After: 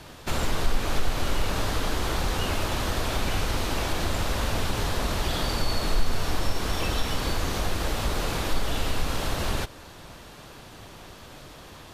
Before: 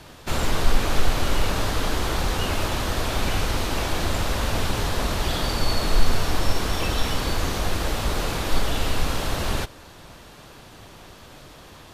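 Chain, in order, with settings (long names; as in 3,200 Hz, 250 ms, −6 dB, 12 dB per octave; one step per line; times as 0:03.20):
downward compressor 1.5 to 1, threshold −26 dBFS, peak gain reduction 6.5 dB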